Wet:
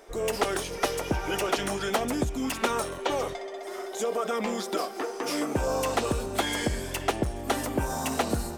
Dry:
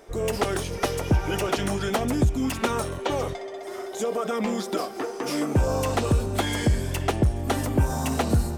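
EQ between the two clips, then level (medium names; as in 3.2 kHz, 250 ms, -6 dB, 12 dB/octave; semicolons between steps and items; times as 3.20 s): peaking EQ 92 Hz -12.5 dB 2.3 oct; 0.0 dB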